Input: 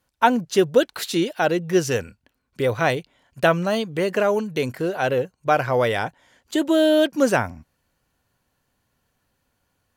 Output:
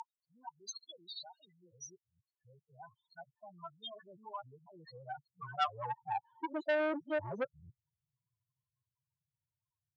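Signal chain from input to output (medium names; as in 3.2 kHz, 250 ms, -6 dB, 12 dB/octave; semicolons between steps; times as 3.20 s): time reversed locally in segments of 249 ms; Doppler pass-by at 4.41 s, 6 m/s, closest 5 m; graphic EQ 125/250/500/1000/2000/4000/8000 Hz +11/-7/-10/+10/-7/+8/+5 dB; in parallel at +1 dB: compression, threshold -39 dBFS, peak gain reduction 21 dB; on the sum: loudest bins only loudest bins 4; band-pass sweep 6.7 kHz -> 460 Hz, 4.62–6.81 s; transformer saturation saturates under 1.6 kHz; trim +6 dB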